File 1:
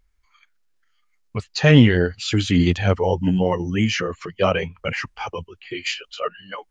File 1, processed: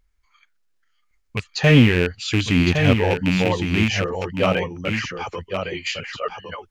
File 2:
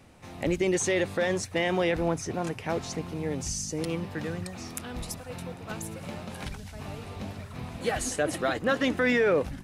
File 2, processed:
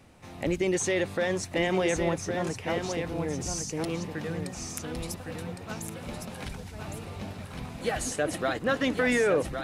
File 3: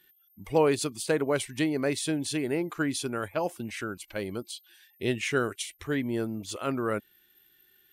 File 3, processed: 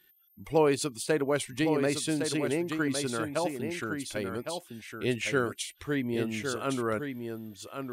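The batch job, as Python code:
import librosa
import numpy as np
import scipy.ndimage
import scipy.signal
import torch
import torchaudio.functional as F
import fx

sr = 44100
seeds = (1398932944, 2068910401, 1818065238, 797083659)

p1 = fx.rattle_buzz(x, sr, strikes_db=-19.0, level_db=-11.0)
p2 = p1 + fx.echo_single(p1, sr, ms=1110, db=-6.5, dry=0)
y = p2 * 10.0 ** (-1.0 / 20.0)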